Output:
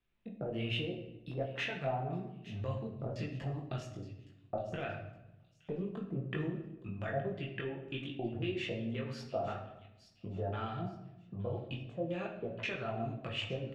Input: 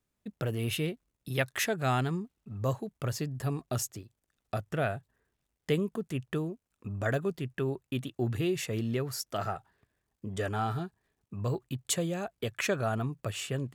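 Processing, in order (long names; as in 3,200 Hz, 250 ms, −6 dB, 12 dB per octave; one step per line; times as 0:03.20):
downward compressor, threshold −35 dBFS, peak gain reduction 12 dB
auto-filter low-pass square 1.9 Hz 690–2,900 Hz
multi-voice chorus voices 6, 1.3 Hz, delay 20 ms, depth 3 ms
delay with a high-pass on its return 867 ms, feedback 32%, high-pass 3,700 Hz, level −11 dB
rectangular room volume 330 cubic metres, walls mixed, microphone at 0.79 metres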